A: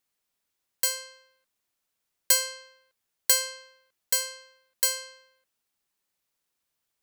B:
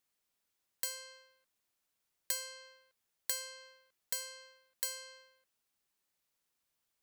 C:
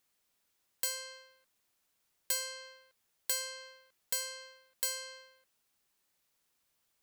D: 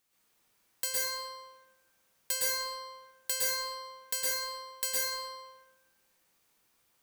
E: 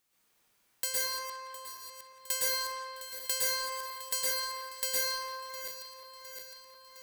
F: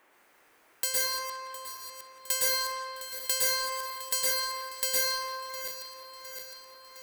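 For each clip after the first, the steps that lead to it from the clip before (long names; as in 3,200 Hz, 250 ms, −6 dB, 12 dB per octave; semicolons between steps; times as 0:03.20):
downward compressor 2.5 to 1, threshold −37 dBFS, peak gain reduction 14 dB; level −2.5 dB
soft clipping −29 dBFS, distortion −12 dB; level +5.5 dB
convolution reverb RT60 1.1 s, pre-delay 102 ms, DRR −7.5 dB
feedback delay that plays each chunk backwards 355 ms, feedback 78%, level −12.5 dB; feedback echo with a band-pass in the loop 174 ms, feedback 64%, band-pass 2,300 Hz, level −7 dB
noise in a band 280–2,300 Hz −68 dBFS; level +3.5 dB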